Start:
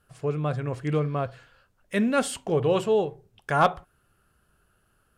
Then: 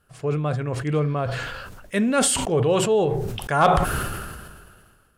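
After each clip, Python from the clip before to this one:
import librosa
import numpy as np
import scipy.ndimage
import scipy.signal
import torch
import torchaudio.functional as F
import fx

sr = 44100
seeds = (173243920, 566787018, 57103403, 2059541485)

y = fx.dynamic_eq(x, sr, hz=8600.0, q=1.5, threshold_db=-53.0, ratio=4.0, max_db=5)
y = fx.sustainer(y, sr, db_per_s=33.0)
y = y * 10.0 ** (2.0 / 20.0)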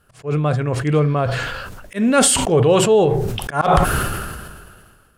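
y = fx.auto_swell(x, sr, attack_ms=125.0)
y = y * 10.0 ** (6.0 / 20.0)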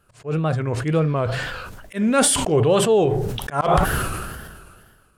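y = fx.wow_flutter(x, sr, seeds[0], rate_hz=2.1, depth_cents=110.0)
y = y * 10.0 ** (-3.0 / 20.0)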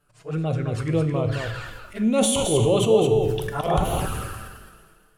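y = fx.env_flanger(x, sr, rest_ms=7.0, full_db=-17.0)
y = fx.comb_fb(y, sr, f0_hz=110.0, decay_s=1.1, harmonics='all', damping=0.0, mix_pct=70)
y = y + 10.0 ** (-6.0 / 20.0) * np.pad(y, (int(216 * sr / 1000.0), 0))[:len(y)]
y = y * 10.0 ** (7.0 / 20.0)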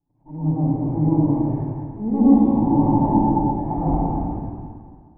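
y = fx.lower_of_two(x, sr, delay_ms=1.1)
y = fx.formant_cascade(y, sr, vowel='u')
y = fx.rev_plate(y, sr, seeds[1], rt60_s=1.7, hf_ratio=0.45, predelay_ms=90, drr_db=-9.5)
y = y * 10.0 ** (5.5 / 20.0)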